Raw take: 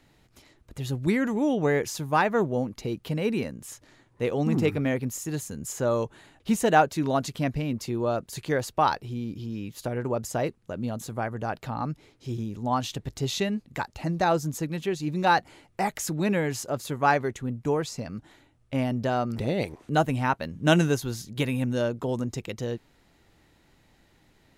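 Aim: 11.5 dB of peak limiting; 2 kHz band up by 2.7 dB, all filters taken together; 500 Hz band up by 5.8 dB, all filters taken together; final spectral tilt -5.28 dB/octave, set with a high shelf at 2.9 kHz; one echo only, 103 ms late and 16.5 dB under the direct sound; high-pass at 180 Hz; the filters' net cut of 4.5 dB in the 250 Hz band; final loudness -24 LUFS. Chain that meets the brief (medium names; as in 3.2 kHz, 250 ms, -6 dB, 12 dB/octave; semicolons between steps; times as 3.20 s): high-pass 180 Hz; peaking EQ 250 Hz -7.5 dB; peaking EQ 500 Hz +9 dB; peaking EQ 2 kHz +5 dB; treble shelf 2.9 kHz -5.5 dB; peak limiter -13.5 dBFS; delay 103 ms -16.5 dB; trim +3 dB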